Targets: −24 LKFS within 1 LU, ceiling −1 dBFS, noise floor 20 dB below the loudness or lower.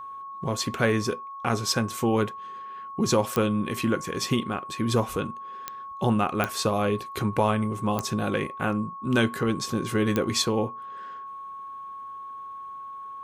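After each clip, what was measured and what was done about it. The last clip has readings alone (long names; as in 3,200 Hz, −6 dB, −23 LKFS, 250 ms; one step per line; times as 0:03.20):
number of clicks 5; interfering tone 1,100 Hz; level of the tone −36 dBFS; integrated loudness −26.5 LKFS; sample peak −10.0 dBFS; target loudness −24.0 LKFS
→ click removal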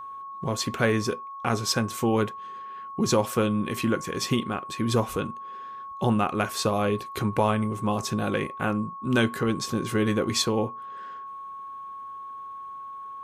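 number of clicks 0; interfering tone 1,100 Hz; level of the tone −36 dBFS
→ notch filter 1,100 Hz, Q 30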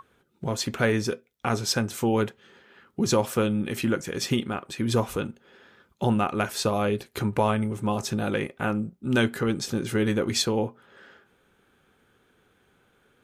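interfering tone none found; integrated loudness −26.5 LKFS; sample peak −10.0 dBFS; target loudness −24.0 LKFS
→ level +2.5 dB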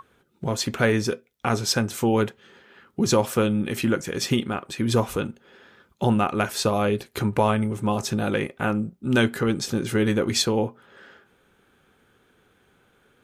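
integrated loudness −24.0 LKFS; sample peak −7.5 dBFS; background noise floor −63 dBFS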